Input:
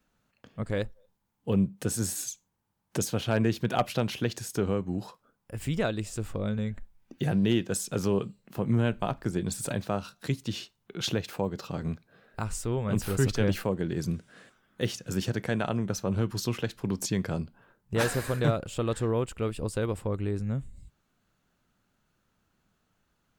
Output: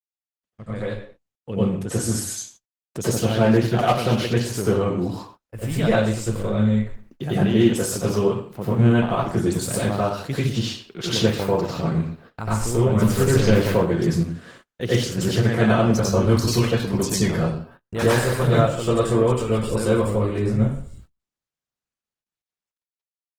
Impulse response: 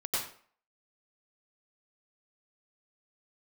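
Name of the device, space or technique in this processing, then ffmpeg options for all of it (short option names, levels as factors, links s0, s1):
speakerphone in a meeting room: -filter_complex "[1:a]atrim=start_sample=2205[s0];[0:a][s0]afir=irnorm=-1:irlink=0,asplit=2[s1][s2];[s2]adelay=120,highpass=300,lowpass=3400,asoftclip=type=hard:threshold=0.168,volume=0.141[s3];[s1][s3]amix=inputs=2:normalize=0,dynaudnorm=f=250:g=13:m=5.62,agate=range=0.0141:threshold=0.00891:ratio=16:detection=peak,volume=0.708" -ar 48000 -c:a libopus -b:a 16k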